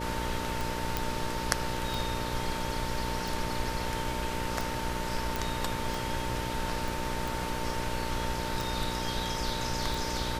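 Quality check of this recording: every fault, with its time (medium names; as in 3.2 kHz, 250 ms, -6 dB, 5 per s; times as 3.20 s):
buzz 60 Hz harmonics 10 -37 dBFS
tick 45 rpm
whine 900 Hz -37 dBFS
0.97 s: pop
5.36 s: pop
6.88 s: pop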